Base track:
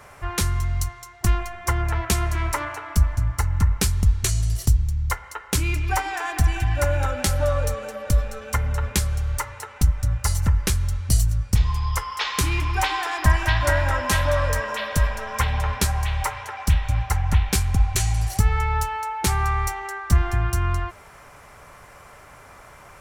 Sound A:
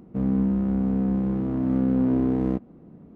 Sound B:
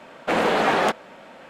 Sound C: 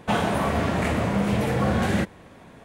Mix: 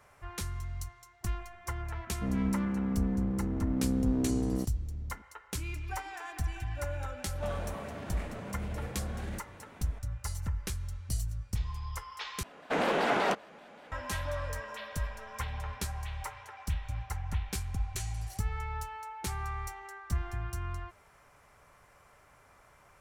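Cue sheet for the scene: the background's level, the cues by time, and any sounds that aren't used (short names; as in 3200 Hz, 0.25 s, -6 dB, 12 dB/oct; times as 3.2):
base track -14.5 dB
2.07 add A -8 dB
7.35 add C -6 dB + compressor, threshold -33 dBFS
12.43 replace with B -8 dB + shaped vibrato square 5.2 Hz, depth 160 cents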